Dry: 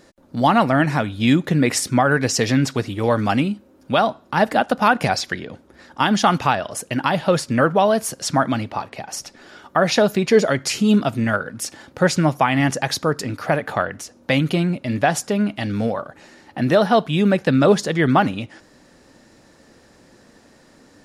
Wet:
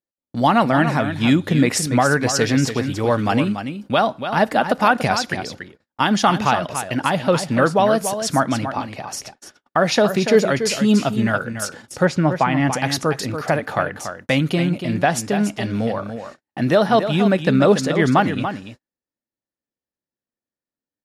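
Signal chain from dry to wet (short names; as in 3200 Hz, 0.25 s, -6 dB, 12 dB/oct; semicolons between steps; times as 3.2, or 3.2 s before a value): echo 0.286 s -9 dB; gate -37 dBFS, range -45 dB; 12.05–12.73 LPF 2200 Hz 6 dB/oct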